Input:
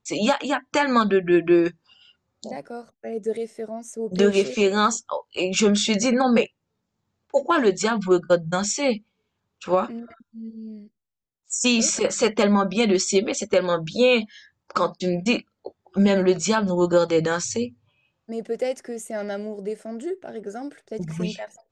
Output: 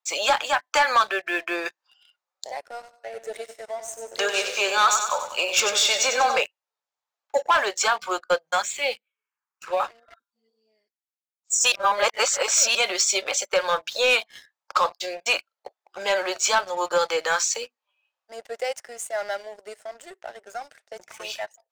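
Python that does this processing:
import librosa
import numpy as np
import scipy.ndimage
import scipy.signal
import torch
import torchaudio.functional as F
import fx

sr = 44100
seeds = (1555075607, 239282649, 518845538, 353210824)

y = fx.echo_feedback(x, sr, ms=95, feedback_pct=54, wet_db=-8.5, at=(2.71, 6.38))
y = fx.env_phaser(y, sr, low_hz=590.0, high_hz=1300.0, full_db=-19.0, at=(8.62, 9.8))
y = fx.edit(y, sr, fx.reverse_span(start_s=11.72, length_s=1.03), tone=tone)
y = scipy.signal.sosfilt(scipy.signal.butter(4, 650.0, 'highpass', fs=sr, output='sos'), y)
y = fx.leveller(y, sr, passes=2)
y = y * librosa.db_to_amplitude(-2.5)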